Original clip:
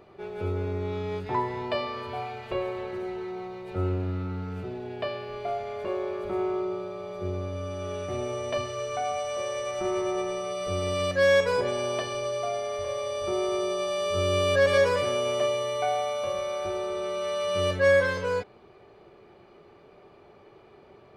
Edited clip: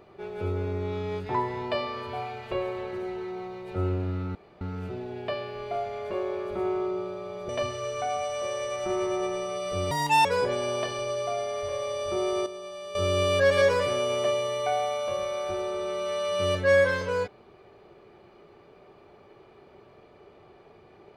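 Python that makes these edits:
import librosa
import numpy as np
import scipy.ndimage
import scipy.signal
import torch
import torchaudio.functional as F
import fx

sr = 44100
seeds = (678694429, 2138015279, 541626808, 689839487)

y = fx.edit(x, sr, fx.insert_room_tone(at_s=4.35, length_s=0.26),
    fx.cut(start_s=7.23, length_s=1.21),
    fx.speed_span(start_s=10.86, length_s=0.55, speed=1.61),
    fx.clip_gain(start_s=13.62, length_s=0.49, db=-10.5), tone=tone)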